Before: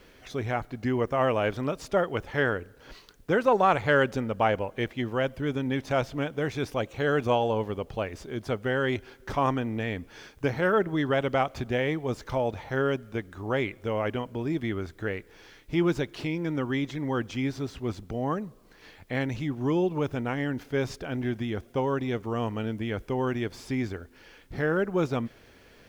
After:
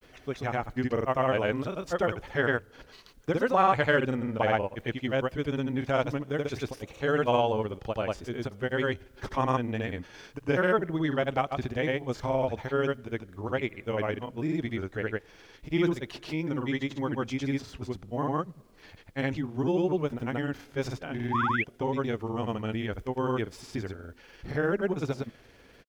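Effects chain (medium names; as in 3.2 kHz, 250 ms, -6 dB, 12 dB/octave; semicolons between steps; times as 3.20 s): painted sound rise, 21.32–21.59 s, 520–3800 Hz -26 dBFS; granulator, pitch spread up and down by 0 st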